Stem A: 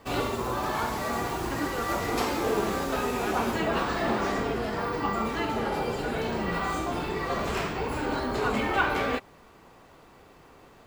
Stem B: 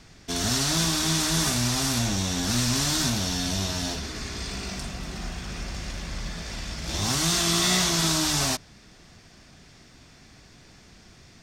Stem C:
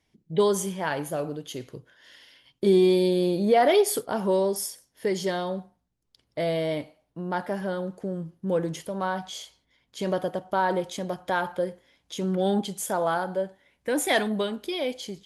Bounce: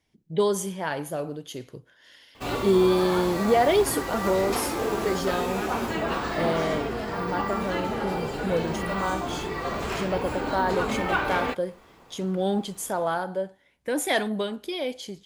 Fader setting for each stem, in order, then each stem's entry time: −0.5 dB, muted, −1.0 dB; 2.35 s, muted, 0.00 s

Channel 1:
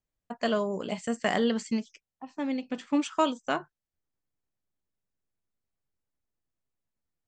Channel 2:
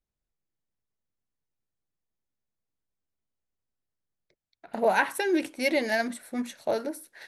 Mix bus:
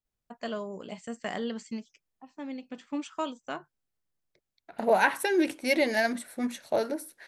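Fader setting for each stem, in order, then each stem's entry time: −7.5, +0.5 decibels; 0.00, 0.05 seconds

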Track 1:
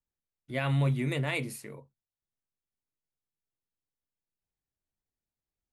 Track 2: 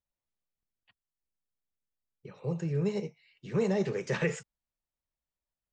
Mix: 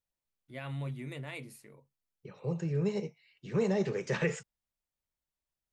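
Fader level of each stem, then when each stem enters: −11.0, −1.0 decibels; 0.00, 0.00 seconds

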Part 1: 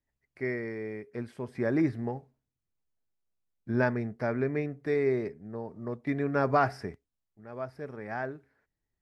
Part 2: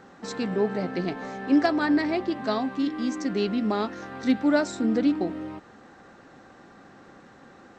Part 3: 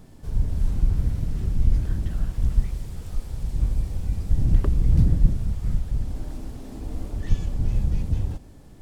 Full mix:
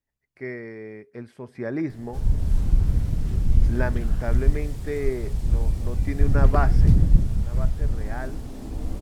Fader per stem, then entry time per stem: −1.0 dB, muted, +1.5 dB; 0.00 s, muted, 1.90 s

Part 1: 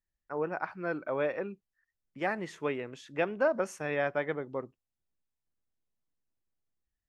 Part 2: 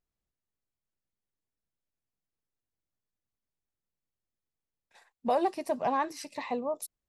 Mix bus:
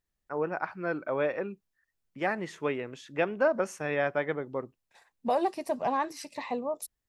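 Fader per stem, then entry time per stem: +2.0, 0.0 decibels; 0.00, 0.00 seconds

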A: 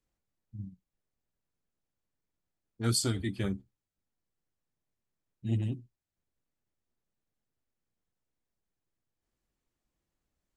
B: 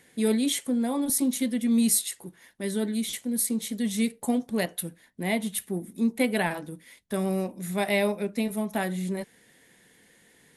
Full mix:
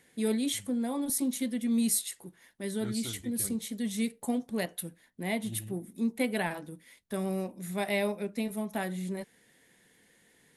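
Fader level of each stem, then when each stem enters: −11.5, −5.0 decibels; 0.00, 0.00 seconds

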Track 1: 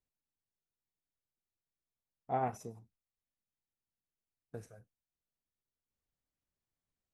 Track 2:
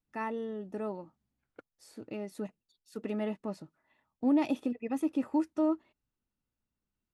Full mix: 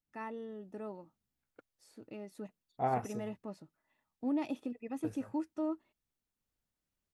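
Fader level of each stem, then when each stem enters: +1.5, −7.0 decibels; 0.50, 0.00 seconds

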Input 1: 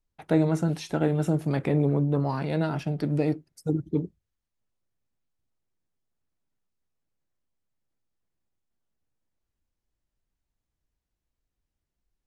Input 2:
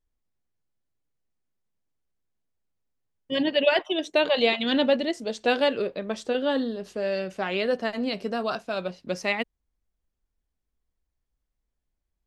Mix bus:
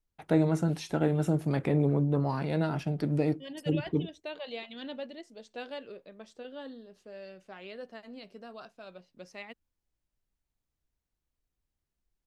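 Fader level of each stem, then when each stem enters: −2.5, −18.0 decibels; 0.00, 0.10 seconds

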